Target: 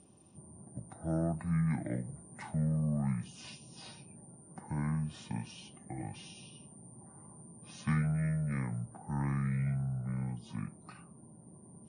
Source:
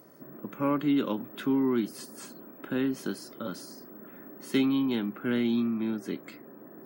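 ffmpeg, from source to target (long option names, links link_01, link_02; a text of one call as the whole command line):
ffmpeg -i in.wav -af "asetrate=25442,aresample=44100,volume=-6dB" out.wav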